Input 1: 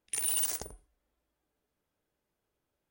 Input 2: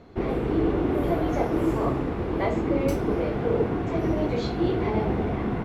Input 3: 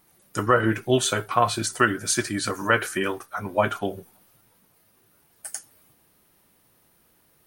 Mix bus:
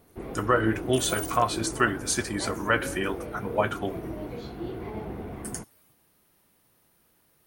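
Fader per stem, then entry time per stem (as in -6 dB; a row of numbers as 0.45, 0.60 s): -6.5, -11.0, -3.5 dB; 0.80, 0.00, 0.00 s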